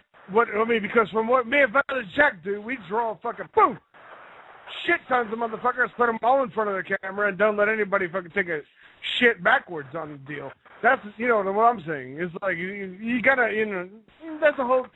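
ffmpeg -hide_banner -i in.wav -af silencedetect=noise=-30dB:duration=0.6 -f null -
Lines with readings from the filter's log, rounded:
silence_start: 3.75
silence_end: 4.70 | silence_duration: 0.95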